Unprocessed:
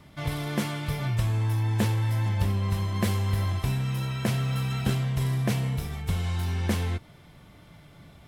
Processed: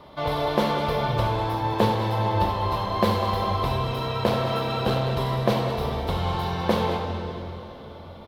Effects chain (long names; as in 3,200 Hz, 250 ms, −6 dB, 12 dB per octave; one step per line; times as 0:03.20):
parametric band 6,800 Hz −4.5 dB 1.9 octaves
loudspeakers that aren't time-aligned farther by 24 metres −11 dB, 69 metres −12 dB
convolution reverb RT60 3.4 s, pre-delay 20 ms, DRR 3.5 dB
0:03.96–0:05.11: asymmetric clip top −21 dBFS
octave-band graphic EQ 125/500/1,000/2,000/4,000/8,000 Hz −5/+11/+11/−4/+11/−8 dB